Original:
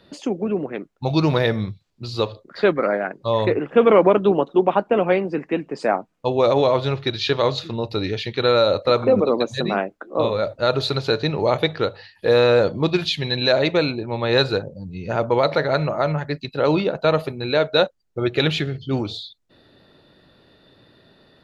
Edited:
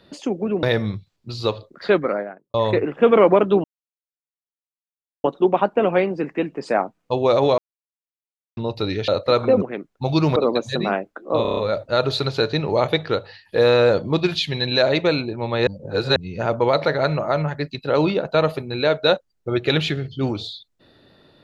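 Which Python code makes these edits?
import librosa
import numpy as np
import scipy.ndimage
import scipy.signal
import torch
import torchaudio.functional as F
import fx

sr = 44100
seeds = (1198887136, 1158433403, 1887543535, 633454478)

y = fx.studio_fade_out(x, sr, start_s=2.68, length_s=0.6)
y = fx.edit(y, sr, fx.move(start_s=0.63, length_s=0.74, to_s=9.21),
    fx.insert_silence(at_s=4.38, length_s=1.6),
    fx.silence(start_s=6.72, length_s=0.99),
    fx.cut(start_s=8.22, length_s=0.45),
    fx.stutter(start_s=10.27, slice_s=0.03, count=6),
    fx.reverse_span(start_s=14.37, length_s=0.49), tone=tone)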